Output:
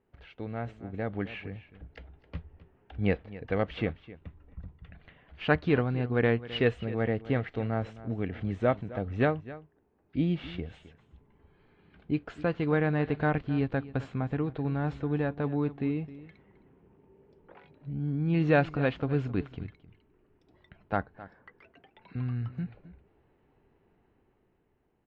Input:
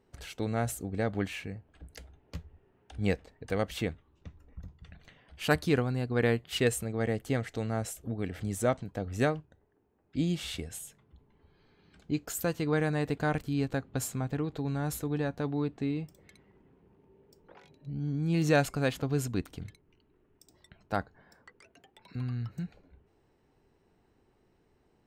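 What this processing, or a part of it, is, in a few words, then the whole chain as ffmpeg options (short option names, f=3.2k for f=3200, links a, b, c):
action camera in a waterproof case: -filter_complex "[0:a]asettb=1/sr,asplit=3[a][b][c];[a]atrim=end=10.344[d];[b]atrim=start=10.34:end=10.74,asetpts=PTS-STARTPTS,afade=t=in:d=0.004:c=qsin,afade=t=out:st=0.396:d=0.004:c=qsin,equalizer=f=4.2k:w=0.48:g=-4.5[e];[c]atrim=start=10.736[f];[d][e]acrossfade=d=0.004:c1=hsin:c2=qsin[g];[g][f]acrossfade=d=0.004:c1=qsin:c2=hsin,lowpass=f=3k:w=0.5412,lowpass=f=3k:w=1.3066,aecho=1:1:263:0.141,dynaudnorm=f=200:g=13:m=7.5dB,volume=-5.5dB" -ar 22050 -c:a aac -b:a 48k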